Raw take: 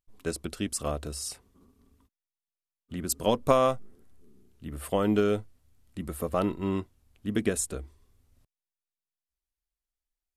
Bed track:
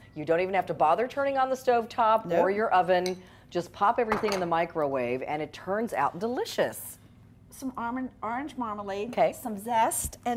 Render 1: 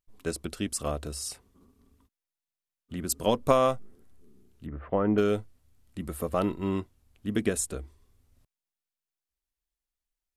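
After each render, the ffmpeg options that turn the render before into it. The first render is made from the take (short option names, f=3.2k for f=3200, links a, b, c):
-filter_complex "[0:a]asettb=1/sr,asplit=3[a][b][c];[a]atrim=end=4.664[d];[b]atrim=start=4.66:end=5.18,asetpts=PTS-STARTPTS,afade=t=in:d=0.004:c=qsin,afade=t=out:st=0.516:d=0.004:c=qsin,lowpass=f=1.9k:w=0.5412,lowpass=f=1.9k:w=1.3066[e];[c]atrim=start=5.176[f];[d][e]acrossfade=d=0.004:c1=hsin:c2=qsin[g];[g][f]acrossfade=d=0.004:c1=qsin:c2=hsin"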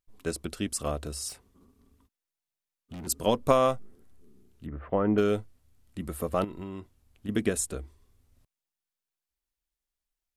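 -filter_complex "[0:a]asettb=1/sr,asplit=3[a][b][c];[a]atrim=end=1.294[d];[b]atrim=start=1.29:end=3.07,asetpts=PTS-STARTPTS,afade=t=in:d=0.004:c=qsin,afade=t=out:st=1.776:d=0.004:c=qsin,asoftclip=type=hard:threshold=-38dB[e];[c]atrim=start=3.066[f];[d][e]acrossfade=d=0.004:c1=hsin:c2=qsin[g];[g][f]acrossfade=d=0.004:c1=qsin:c2=hsin,asettb=1/sr,asplit=3[h][i][j];[h]atrim=end=6.444[k];[i]atrim=start=6.44:end=7.29,asetpts=PTS-STARTPTS,afade=t=in:d=0.004:c=qsin,afade=t=out:st=0.846:d=0.004:c=qsin,acompressor=threshold=-35dB:ratio=6:attack=3.2:release=140:knee=1:detection=peak[l];[j]atrim=start=7.286[m];[k][l]acrossfade=d=0.004:c1=hsin:c2=qsin[n];[n][m]acrossfade=d=0.004:c1=qsin:c2=hsin"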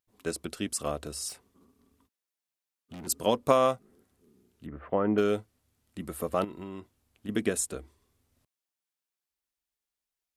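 -af "highpass=f=170:p=1"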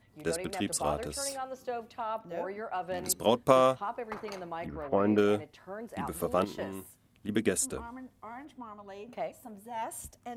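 -filter_complex "[1:a]volume=-12.5dB[a];[0:a][a]amix=inputs=2:normalize=0"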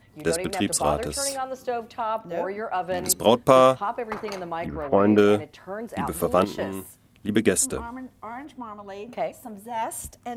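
-af "volume=8dB,alimiter=limit=-3dB:level=0:latency=1"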